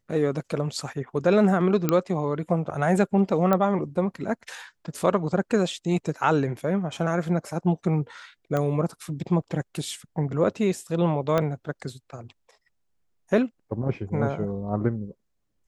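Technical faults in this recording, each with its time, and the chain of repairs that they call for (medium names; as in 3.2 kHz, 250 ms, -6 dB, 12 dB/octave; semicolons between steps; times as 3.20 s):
1.89 s: pop -8 dBFS
3.53 s: pop -10 dBFS
8.57 s: pop -15 dBFS
11.38 s: pop -11 dBFS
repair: de-click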